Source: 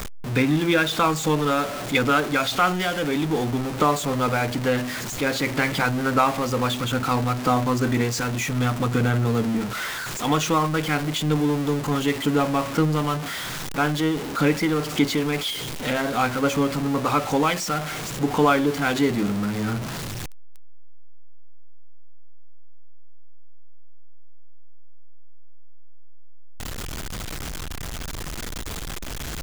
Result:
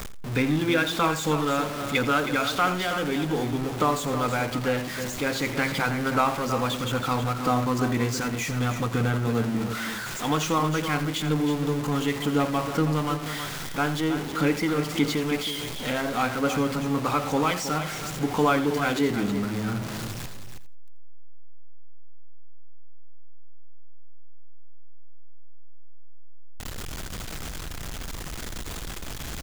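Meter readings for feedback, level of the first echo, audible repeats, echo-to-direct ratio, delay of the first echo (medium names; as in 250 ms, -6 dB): no regular repeats, -14.0 dB, 4, -8.0 dB, 85 ms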